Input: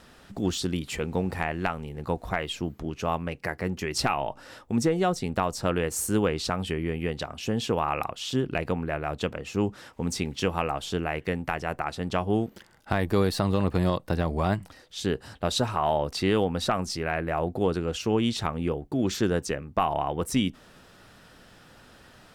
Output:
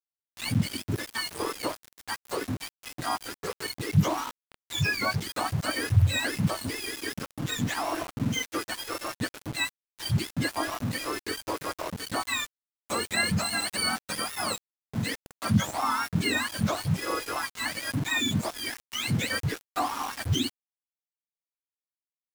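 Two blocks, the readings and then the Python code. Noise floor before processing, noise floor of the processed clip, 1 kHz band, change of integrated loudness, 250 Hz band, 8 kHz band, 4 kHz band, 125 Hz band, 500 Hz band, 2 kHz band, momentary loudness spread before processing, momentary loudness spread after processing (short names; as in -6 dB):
-54 dBFS, under -85 dBFS, -3.0 dB, -1.0 dB, -4.0 dB, +2.5 dB, +3.0 dB, +1.0 dB, -9.0 dB, +3.5 dB, 7 LU, 9 LU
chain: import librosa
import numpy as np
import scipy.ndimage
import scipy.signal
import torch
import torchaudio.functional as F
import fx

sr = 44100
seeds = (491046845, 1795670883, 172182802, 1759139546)

y = fx.octave_mirror(x, sr, pivot_hz=900.0)
y = np.where(np.abs(y) >= 10.0 ** (-33.0 / 20.0), y, 0.0)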